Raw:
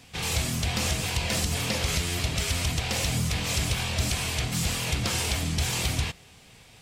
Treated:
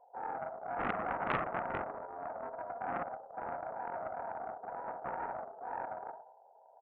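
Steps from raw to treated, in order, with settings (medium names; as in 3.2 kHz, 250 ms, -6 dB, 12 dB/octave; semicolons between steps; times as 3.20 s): 0.79–1.61 s: square wave that keeps the level; spectral gate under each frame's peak -25 dB strong; comb 1.2 ms, depth 71%; 2.41–3.52 s: compressor with a negative ratio -26 dBFS, ratio -0.5; saturation -16.5 dBFS, distortion -16 dB; brick-wall FIR band-pass 390–1000 Hz; reverberation RT60 0.75 s, pre-delay 4 ms, DRR 5 dB; loudspeaker Doppler distortion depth 0.77 ms; trim -1.5 dB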